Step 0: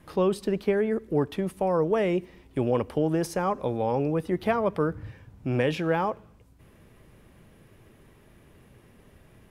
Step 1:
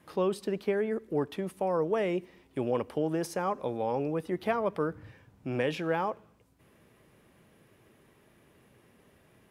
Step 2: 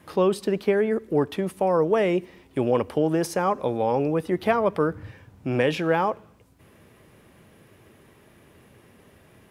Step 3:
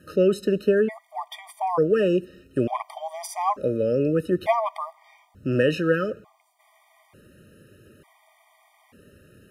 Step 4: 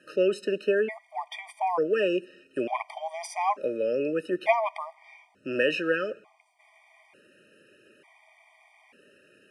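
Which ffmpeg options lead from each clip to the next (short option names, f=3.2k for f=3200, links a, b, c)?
-af "highpass=f=200:p=1,volume=-3.5dB"
-af "equalizer=f=88:w=4.3:g=5.5,volume=7.5dB"
-af "afftfilt=real='re*gt(sin(2*PI*0.56*pts/sr)*(1-2*mod(floor(b*sr/1024/620),2)),0)':imag='im*gt(sin(2*PI*0.56*pts/sr)*(1-2*mod(floor(b*sr/1024/620),2)),0)':win_size=1024:overlap=0.75,volume=2dB"
-af "highpass=420,equalizer=f=480:t=q:w=4:g=-3,equalizer=f=1.2k:t=q:w=4:g=-7,equalizer=f=2.4k:t=q:w=4:g=8,equalizer=f=3.9k:t=q:w=4:g=-6,equalizer=f=6.9k:t=q:w=4:g=-7,lowpass=f=8.8k:w=0.5412,lowpass=f=8.8k:w=1.3066"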